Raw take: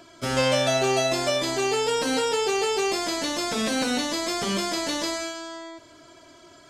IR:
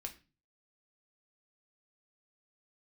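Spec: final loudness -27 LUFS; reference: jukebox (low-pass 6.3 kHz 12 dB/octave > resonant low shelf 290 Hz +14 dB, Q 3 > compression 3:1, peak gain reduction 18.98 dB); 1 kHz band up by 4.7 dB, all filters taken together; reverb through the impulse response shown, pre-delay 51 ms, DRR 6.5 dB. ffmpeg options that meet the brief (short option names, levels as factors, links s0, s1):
-filter_complex "[0:a]equalizer=f=1000:t=o:g=8.5,asplit=2[s0][s1];[1:a]atrim=start_sample=2205,adelay=51[s2];[s1][s2]afir=irnorm=-1:irlink=0,volume=0.668[s3];[s0][s3]amix=inputs=2:normalize=0,lowpass=6300,lowshelf=f=290:t=q:w=3:g=14,acompressor=threshold=0.0355:ratio=3,volume=1.33"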